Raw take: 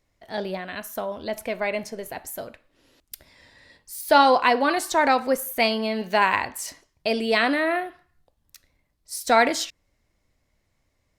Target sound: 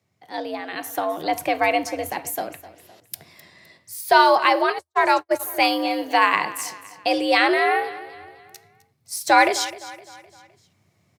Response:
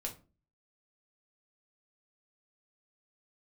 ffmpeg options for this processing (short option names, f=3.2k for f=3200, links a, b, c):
-filter_complex "[0:a]asplit=2[a][b];[b]aecho=0:1:257|514|771|1028:0.141|0.0607|0.0261|0.0112[c];[a][c]amix=inputs=2:normalize=0,dynaudnorm=f=130:g=13:m=7.5dB,asplit=3[d][e][f];[d]afade=t=out:st=4.66:d=0.02[g];[e]agate=range=-59dB:threshold=-17dB:ratio=16:detection=peak,afade=t=in:st=4.66:d=0.02,afade=t=out:st=5.39:d=0.02[h];[f]afade=t=in:st=5.39:d=0.02[i];[g][h][i]amix=inputs=3:normalize=0,afreqshift=82,volume=-1dB"